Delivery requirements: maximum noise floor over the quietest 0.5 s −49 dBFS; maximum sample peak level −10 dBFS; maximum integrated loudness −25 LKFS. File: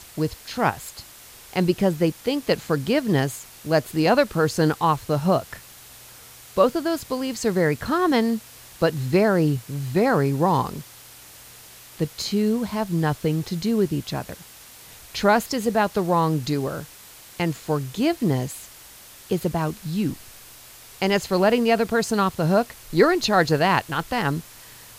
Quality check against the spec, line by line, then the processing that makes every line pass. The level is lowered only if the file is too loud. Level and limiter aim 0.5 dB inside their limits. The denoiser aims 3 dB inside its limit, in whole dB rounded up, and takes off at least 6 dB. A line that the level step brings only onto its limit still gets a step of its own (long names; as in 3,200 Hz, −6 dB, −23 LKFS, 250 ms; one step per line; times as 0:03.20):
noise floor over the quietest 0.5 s −46 dBFS: out of spec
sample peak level −4.0 dBFS: out of spec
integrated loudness −22.5 LKFS: out of spec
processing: broadband denoise 6 dB, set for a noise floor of −46 dBFS
level −3 dB
brickwall limiter −10.5 dBFS